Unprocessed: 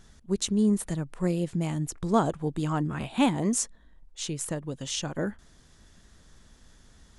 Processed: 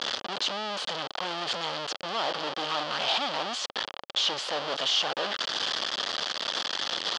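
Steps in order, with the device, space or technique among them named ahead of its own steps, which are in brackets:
home computer beeper (sign of each sample alone; loudspeaker in its box 530–5,100 Hz, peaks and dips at 560 Hz +4 dB, 800 Hz +3 dB, 1,200 Hz +4 dB, 2,200 Hz −4 dB, 3,200 Hz +10 dB, 4,600 Hz +7 dB)
level +2 dB

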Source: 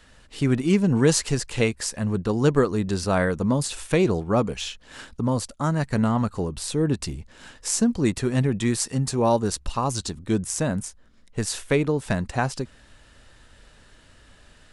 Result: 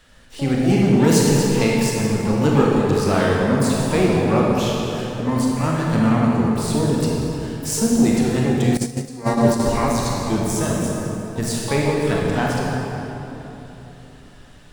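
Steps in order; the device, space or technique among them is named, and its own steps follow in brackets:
shimmer-style reverb (pitch-shifted copies added +12 semitones −10 dB; convolution reverb RT60 3.4 s, pre-delay 24 ms, DRR −3.5 dB)
0:08.77–0:09.60: noise gate −14 dBFS, range −15 dB
level −1 dB

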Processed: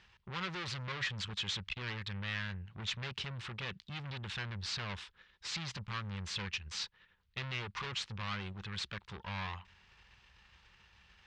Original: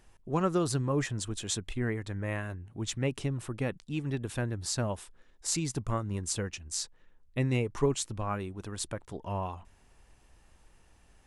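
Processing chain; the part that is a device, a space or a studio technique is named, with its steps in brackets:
scooped metal amplifier (tube saturation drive 41 dB, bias 0.75; loudspeaker in its box 85–4,200 Hz, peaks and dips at 200 Hz +8 dB, 360 Hz +7 dB, 670 Hz −9 dB; guitar amp tone stack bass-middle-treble 10-0-10)
level +15.5 dB

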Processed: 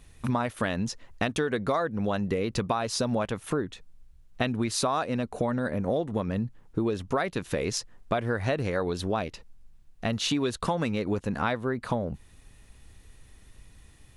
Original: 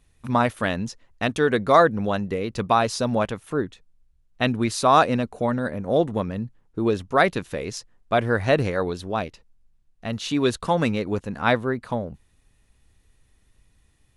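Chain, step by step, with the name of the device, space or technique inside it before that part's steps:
serial compression, peaks first (downward compressor, threshold −27 dBFS, peak gain reduction 16 dB; downward compressor 1.5 to 1, threshold −42 dBFS, peak gain reduction 6.5 dB)
level +8.5 dB

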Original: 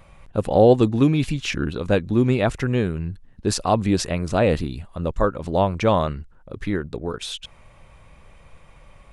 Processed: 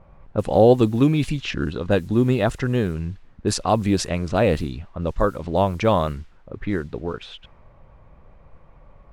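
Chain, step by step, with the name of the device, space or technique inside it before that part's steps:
0:01.48–0:02.85: notch filter 2,300 Hz, Q 8.2
cassette deck with a dynamic noise filter (white noise bed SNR 33 dB; low-pass that shuts in the quiet parts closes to 970 Hz, open at −17 dBFS)

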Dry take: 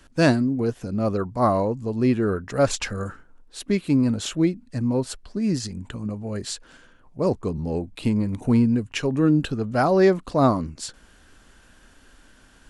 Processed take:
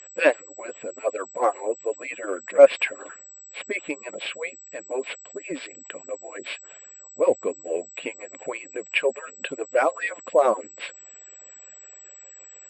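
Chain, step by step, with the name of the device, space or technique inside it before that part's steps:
harmonic-percussive split with one part muted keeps percussive
toy sound module (linearly interpolated sample-rate reduction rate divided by 4×; switching amplifier with a slow clock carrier 7,800 Hz; loudspeaker in its box 500–4,700 Hz, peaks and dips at 540 Hz +9 dB, 850 Hz −6 dB, 1,300 Hz −6 dB, 2,400 Hz +9 dB, 4,200 Hz −5 dB)
parametric band 8,300 Hz +2.5 dB 0.28 octaves
level +4.5 dB

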